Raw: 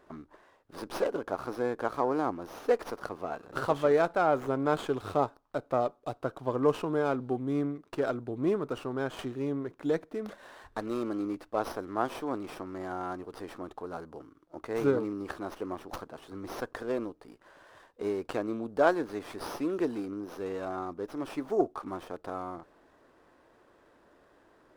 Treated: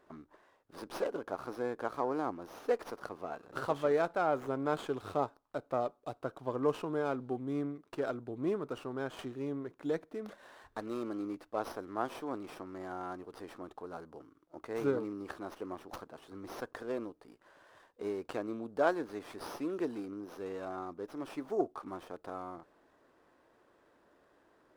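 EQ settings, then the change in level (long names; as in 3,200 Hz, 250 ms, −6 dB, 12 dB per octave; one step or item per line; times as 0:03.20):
low-shelf EQ 68 Hz −6.5 dB
−5.0 dB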